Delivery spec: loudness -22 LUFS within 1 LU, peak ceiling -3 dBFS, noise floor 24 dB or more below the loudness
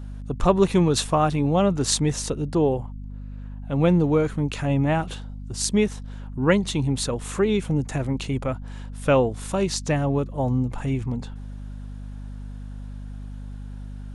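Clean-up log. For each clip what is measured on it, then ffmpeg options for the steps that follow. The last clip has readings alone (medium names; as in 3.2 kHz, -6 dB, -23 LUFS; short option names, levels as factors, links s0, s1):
hum 50 Hz; highest harmonic 250 Hz; hum level -33 dBFS; loudness -23.5 LUFS; peak level -3.5 dBFS; loudness target -22.0 LUFS
-> -af "bandreject=f=50:t=h:w=4,bandreject=f=100:t=h:w=4,bandreject=f=150:t=h:w=4,bandreject=f=200:t=h:w=4,bandreject=f=250:t=h:w=4"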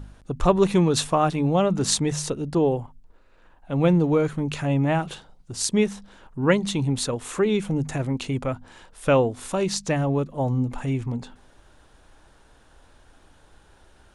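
hum not found; loudness -23.5 LUFS; peak level -3.0 dBFS; loudness target -22.0 LUFS
-> -af "volume=1.19,alimiter=limit=0.708:level=0:latency=1"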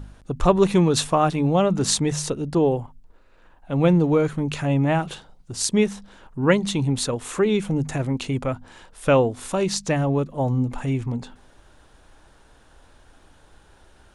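loudness -22.0 LUFS; peak level -3.0 dBFS; noise floor -54 dBFS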